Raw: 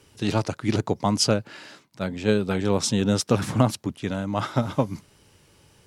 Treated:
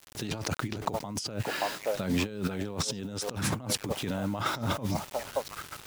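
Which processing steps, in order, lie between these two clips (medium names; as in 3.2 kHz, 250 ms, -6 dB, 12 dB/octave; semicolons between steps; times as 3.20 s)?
repeats whose band climbs or falls 576 ms, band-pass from 680 Hz, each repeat 1.4 oct, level -12 dB; bit crusher 8-bit; compressor with a negative ratio -33 dBFS, ratio -1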